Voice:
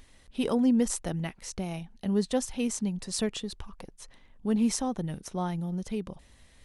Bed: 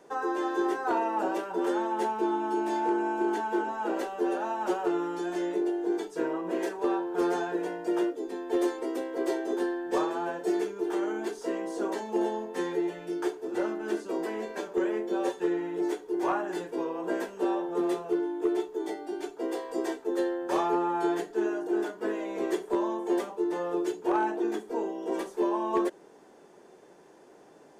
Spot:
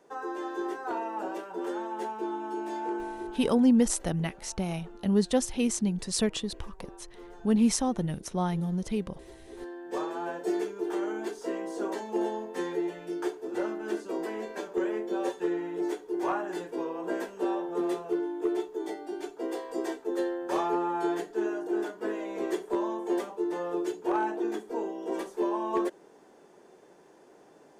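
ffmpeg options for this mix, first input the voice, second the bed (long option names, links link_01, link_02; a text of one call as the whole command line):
ffmpeg -i stem1.wav -i stem2.wav -filter_complex "[0:a]adelay=3000,volume=2.5dB[link_01];[1:a]volume=14.5dB,afade=type=out:start_time=2.96:duration=0.57:silence=0.158489,afade=type=in:start_time=9.44:duration=0.9:silence=0.1[link_02];[link_01][link_02]amix=inputs=2:normalize=0" out.wav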